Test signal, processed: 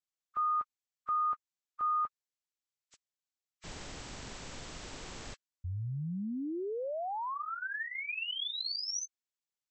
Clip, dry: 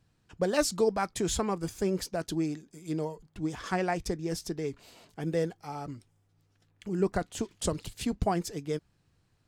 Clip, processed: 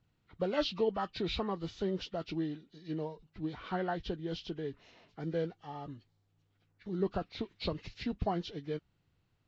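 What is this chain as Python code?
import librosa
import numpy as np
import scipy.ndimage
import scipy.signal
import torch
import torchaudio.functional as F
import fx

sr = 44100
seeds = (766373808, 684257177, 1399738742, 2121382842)

y = fx.freq_compress(x, sr, knee_hz=1100.0, ratio=1.5)
y = y * 10.0 ** (-5.0 / 20.0)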